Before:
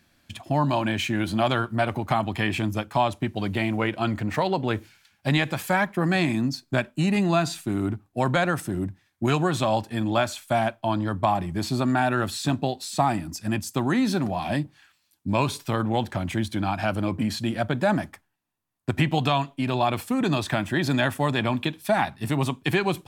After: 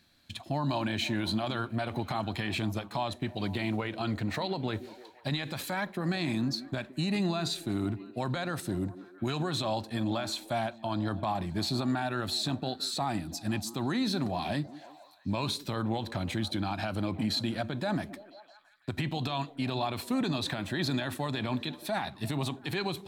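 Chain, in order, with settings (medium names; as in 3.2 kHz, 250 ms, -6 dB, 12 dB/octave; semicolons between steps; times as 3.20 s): peaking EQ 4 kHz +12.5 dB 0.27 oct; peak limiter -17.5 dBFS, peak gain reduction 11 dB; on a send: repeats whose band climbs or falls 168 ms, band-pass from 290 Hz, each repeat 0.7 oct, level -12 dB; on the sum: trim -4.5 dB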